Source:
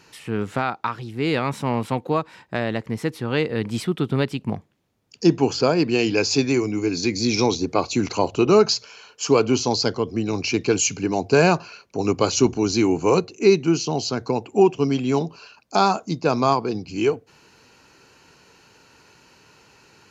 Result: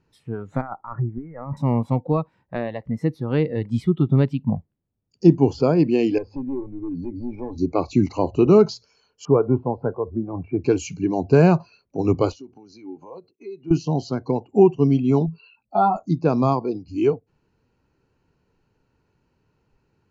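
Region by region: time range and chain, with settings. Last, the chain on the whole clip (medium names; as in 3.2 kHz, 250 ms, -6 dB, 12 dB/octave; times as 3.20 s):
0.61–1.57 s: steep low-pass 2.1 kHz 48 dB/octave + compressor with a negative ratio -30 dBFS
6.18–7.58 s: low-pass 1.3 kHz + compression 2:1, threshold -28 dBFS + hard clipper -24.5 dBFS
9.25–10.64 s: low-pass 1.6 kHz 24 dB/octave + peaking EQ 280 Hz -4.5 dB 0.53 oct
12.32–13.71 s: expander -34 dBFS + compression 8:1, threshold -30 dBFS + band-pass 190–5200 Hz
15.26–15.96 s: spectral contrast enhancement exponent 1.8 + resonant high shelf 4.6 kHz -9 dB, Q 3 + doubling 19 ms -4 dB
whole clip: tilt EQ -4 dB/octave; spectral noise reduction 15 dB; trim -4 dB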